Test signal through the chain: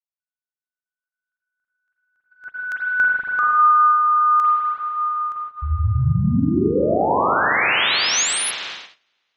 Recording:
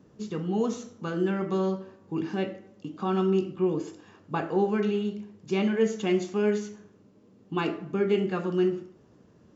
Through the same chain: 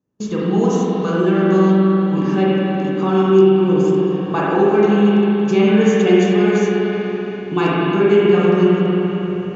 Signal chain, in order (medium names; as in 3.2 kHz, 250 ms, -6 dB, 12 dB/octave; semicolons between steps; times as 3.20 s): spring tank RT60 3.3 s, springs 39/47 ms, chirp 55 ms, DRR -6.5 dB; gate -40 dBFS, range -31 dB; peaking EQ 6.4 kHz +6.5 dB 0.21 oct; in parallel at -1.5 dB: compression, threshold -26 dBFS; on the sum: trim +3.5 dB